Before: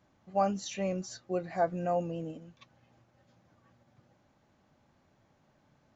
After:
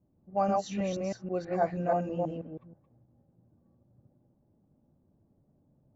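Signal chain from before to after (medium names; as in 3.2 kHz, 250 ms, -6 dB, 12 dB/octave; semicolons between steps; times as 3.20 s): chunks repeated in reverse 161 ms, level -1 dB; level-controlled noise filter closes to 370 Hz, open at -26 dBFS; treble shelf 2.5 kHz -6.5 dB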